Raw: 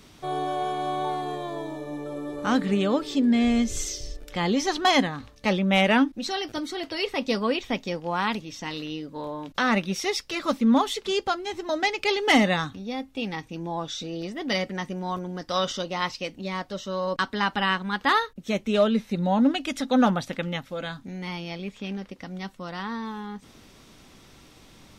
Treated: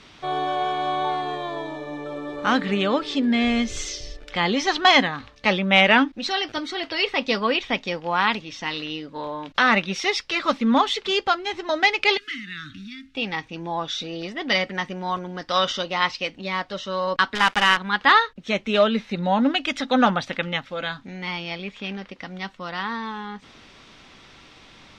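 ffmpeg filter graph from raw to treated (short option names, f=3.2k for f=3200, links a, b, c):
-filter_complex "[0:a]asettb=1/sr,asplit=3[a][b][c];[a]atrim=end=12.174[d];[b]atrim=start=12.17:end=13.15,asetpts=PTS-STARTPTS,afade=t=in:d=0.004:c=qsin,afade=t=out:st=0.976:d=0.004:c=qsin,acompressor=threshold=-33dB:ratio=10:attack=3.2:release=140:knee=1:detection=peak,acrusher=bits=6:mode=log:mix=0:aa=0.000001,asuperstop=centerf=660:order=12:qfactor=0.66[e];[c]atrim=start=13.146[f];[d][e]acrossfade=d=0.004:c1=hsin:c2=qsin[g];[g][f]acrossfade=d=0.004:c1=qsin:c2=hsin,asettb=1/sr,asplit=3[h][i][j];[h]atrim=end=17.354[k];[i]atrim=start=17.35:end=17.77,asetpts=PTS-STARTPTS,afade=t=in:d=0.004:c=qsin,afade=t=out:st=0.416:d=0.004:c=qsin,acrusher=bits=5:dc=4:mix=0:aa=0.000001,bandreject=f=4.2k:w=13[l];[j]atrim=start=17.766[m];[k][l]acrossfade=d=0.004:c1=hsin:c2=qsin[n];[n][m]acrossfade=d=0.004:c1=qsin:c2=hsin,lowpass=3.7k,tiltshelf=f=760:g=-5.5,volume=4dB"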